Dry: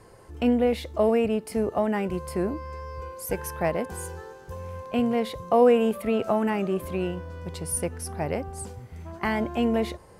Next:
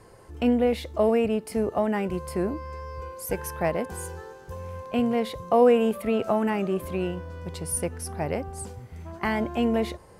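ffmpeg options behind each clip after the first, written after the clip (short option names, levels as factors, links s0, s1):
-af anull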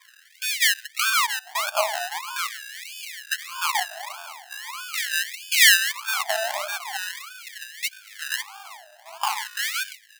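-af "highpass=f=330:w=0.5412,highpass=f=330:w=1.3066,equalizer=f=510:t=q:w=4:g=8,equalizer=f=720:t=q:w=4:g=-9,equalizer=f=1100:t=q:w=4:g=4,equalizer=f=3900:t=q:w=4:g=-3,lowpass=f=5500:w=0.5412,lowpass=f=5500:w=1.3066,acrusher=samples=31:mix=1:aa=0.000001:lfo=1:lforange=18.6:lforate=1.6,afftfilt=real='re*gte(b*sr/1024,580*pow(1600/580,0.5+0.5*sin(2*PI*0.42*pts/sr)))':imag='im*gte(b*sr/1024,580*pow(1600/580,0.5+0.5*sin(2*PI*0.42*pts/sr)))':win_size=1024:overlap=0.75,volume=1.88"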